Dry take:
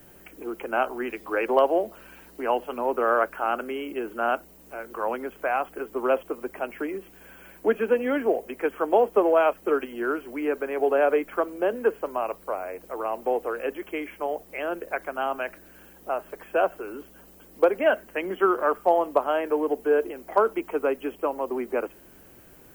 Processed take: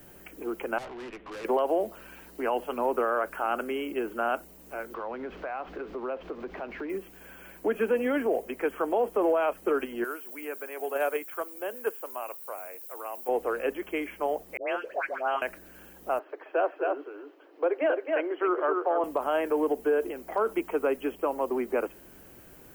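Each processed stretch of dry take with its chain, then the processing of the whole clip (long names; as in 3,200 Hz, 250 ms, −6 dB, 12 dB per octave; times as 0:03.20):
0:00.78–0:01.45: variable-slope delta modulation 16 kbit/s + tube saturation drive 38 dB, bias 0.45
0:04.94–0:06.90: converter with a step at zero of −38.5 dBFS + downward compressor 2.5 to 1, threshold −34 dBFS + high-frequency loss of the air 250 metres
0:10.04–0:13.29: RIAA equalisation recording + noise gate −22 dBFS, range −8 dB
0:14.57–0:15.42: three-way crossover with the lows and the highs turned down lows −18 dB, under 360 Hz, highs −17 dB, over 5,900 Hz + all-pass dispersion highs, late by 117 ms, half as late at 1,000 Hz
0:16.19–0:19.04: Butterworth high-pass 280 Hz 96 dB per octave + high-frequency loss of the air 320 metres + single-tap delay 266 ms −5.5 dB
whole clip: dynamic equaliser 9,700 Hz, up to +4 dB, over −52 dBFS, Q 1.1; brickwall limiter −17.5 dBFS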